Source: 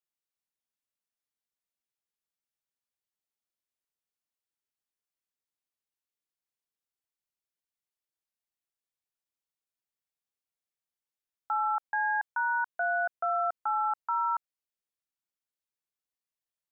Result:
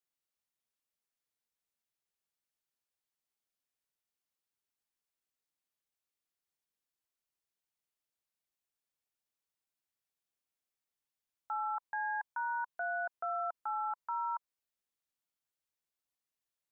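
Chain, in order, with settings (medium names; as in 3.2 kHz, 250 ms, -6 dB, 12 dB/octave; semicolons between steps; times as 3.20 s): dynamic bell 990 Hz, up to +6 dB, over -45 dBFS, Q 4.8; peak limiter -29.5 dBFS, peak gain reduction 10.5 dB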